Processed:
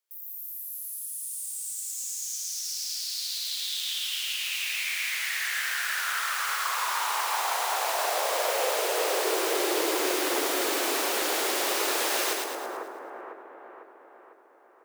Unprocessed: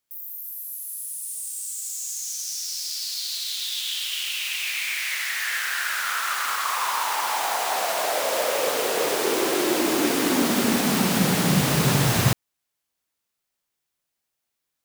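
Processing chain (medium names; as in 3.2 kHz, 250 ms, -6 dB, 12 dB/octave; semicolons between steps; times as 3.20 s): steep high-pass 340 Hz 48 dB/octave; on a send: two-band feedback delay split 1.5 kHz, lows 500 ms, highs 110 ms, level -3 dB; on the sum: trim -5 dB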